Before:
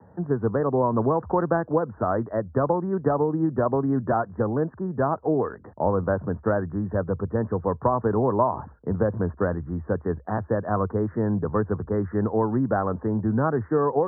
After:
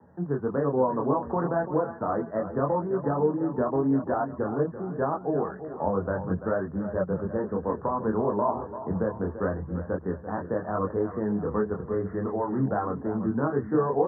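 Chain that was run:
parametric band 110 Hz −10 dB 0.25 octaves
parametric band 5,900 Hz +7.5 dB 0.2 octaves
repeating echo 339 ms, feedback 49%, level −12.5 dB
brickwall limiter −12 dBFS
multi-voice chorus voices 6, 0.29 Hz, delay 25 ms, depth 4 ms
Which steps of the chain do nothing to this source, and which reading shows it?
parametric band 5,900 Hz: nothing at its input above 1,800 Hz

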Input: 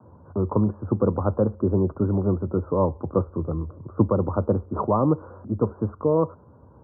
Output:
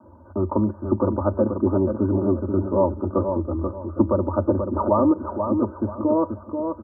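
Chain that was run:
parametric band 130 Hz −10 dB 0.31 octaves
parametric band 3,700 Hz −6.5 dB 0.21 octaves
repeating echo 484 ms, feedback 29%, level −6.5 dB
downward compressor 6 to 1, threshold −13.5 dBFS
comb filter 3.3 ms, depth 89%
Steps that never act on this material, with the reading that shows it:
parametric band 3,700 Hz: nothing at its input above 1,300 Hz

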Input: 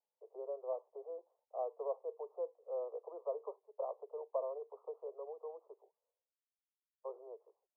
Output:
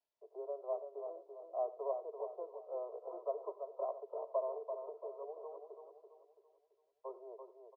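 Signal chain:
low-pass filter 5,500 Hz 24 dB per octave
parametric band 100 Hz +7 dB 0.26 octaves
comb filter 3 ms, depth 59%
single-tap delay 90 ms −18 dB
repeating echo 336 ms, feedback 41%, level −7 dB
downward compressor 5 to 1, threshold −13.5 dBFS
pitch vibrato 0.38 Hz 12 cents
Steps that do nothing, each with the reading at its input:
low-pass filter 5,500 Hz: nothing at its input above 1,200 Hz
parametric band 100 Hz: nothing at its input below 340 Hz
downward compressor, threshold −13.5 dBFS: peak of its input −25.0 dBFS

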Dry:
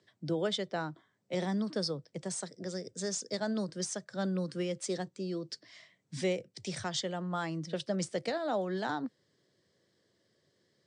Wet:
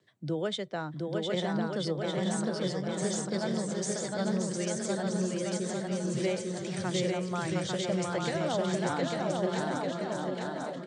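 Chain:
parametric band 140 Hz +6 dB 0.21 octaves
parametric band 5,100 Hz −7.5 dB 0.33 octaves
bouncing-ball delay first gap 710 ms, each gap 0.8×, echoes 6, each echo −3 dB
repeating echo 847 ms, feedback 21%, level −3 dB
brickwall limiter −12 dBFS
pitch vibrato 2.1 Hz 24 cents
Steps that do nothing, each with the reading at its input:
brickwall limiter −12 dBFS: peak of its input −17.0 dBFS

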